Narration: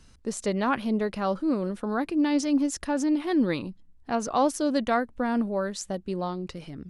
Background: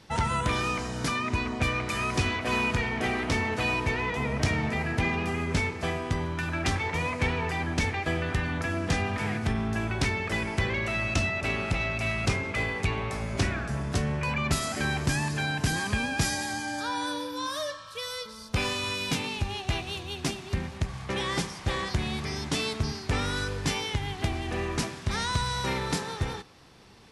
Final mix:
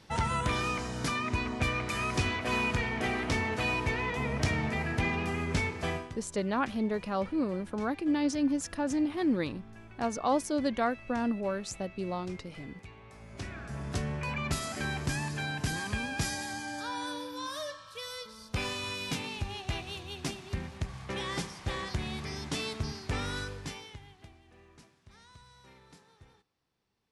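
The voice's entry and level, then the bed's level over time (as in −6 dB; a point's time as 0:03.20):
5.90 s, −4.5 dB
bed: 0:05.96 −3 dB
0:06.20 −21.5 dB
0:13.00 −21.5 dB
0:13.88 −5.5 dB
0:23.38 −5.5 dB
0:24.42 −27.5 dB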